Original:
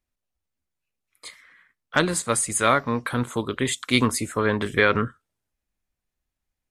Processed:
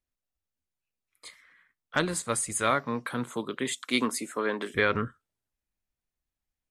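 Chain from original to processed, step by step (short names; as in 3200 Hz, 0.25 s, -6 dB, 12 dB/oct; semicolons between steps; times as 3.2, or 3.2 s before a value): 2.7–4.74 HPF 110 Hz -> 250 Hz 24 dB/oct; gain -6 dB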